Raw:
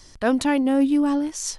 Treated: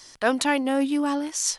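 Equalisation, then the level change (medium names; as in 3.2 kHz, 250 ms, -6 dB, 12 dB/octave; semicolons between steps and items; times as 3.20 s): bass shelf 93 Hz -12 dB; bass shelf 450 Hz -11 dB; +4.0 dB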